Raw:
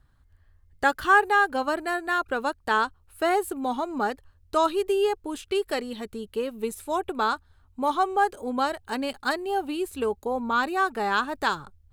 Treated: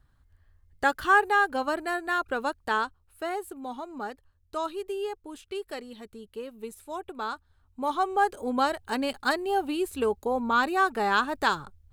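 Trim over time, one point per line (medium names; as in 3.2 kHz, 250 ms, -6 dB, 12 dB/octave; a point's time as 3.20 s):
2.60 s -2 dB
3.31 s -9 dB
7.16 s -9 dB
8.46 s +0.5 dB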